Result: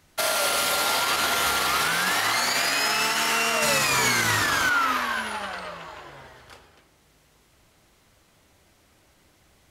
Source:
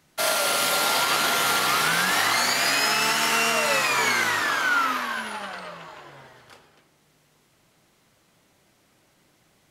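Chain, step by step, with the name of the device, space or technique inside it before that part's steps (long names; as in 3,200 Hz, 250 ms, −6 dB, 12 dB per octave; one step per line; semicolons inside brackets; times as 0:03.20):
car stereo with a boomy subwoofer (low shelf with overshoot 100 Hz +9 dB, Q 1.5; brickwall limiter −16 dBFS, peak gain reduction 6.5 dB)
0:03.62–0:04.70: bass and treble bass +12 dB, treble +6 dB
level +2 dB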